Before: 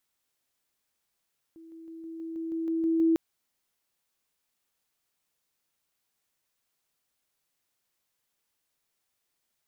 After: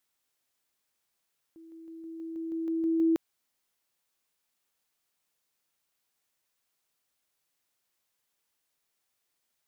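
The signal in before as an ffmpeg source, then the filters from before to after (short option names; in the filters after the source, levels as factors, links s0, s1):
-f lavfi -i "aevalsrc='pow(10,(-46.5+3*floor(t/0.16))/20)*sin(2*PI*327*t)':d=1.6:s=44100"
-af "lowshelf=f=230:g=-4"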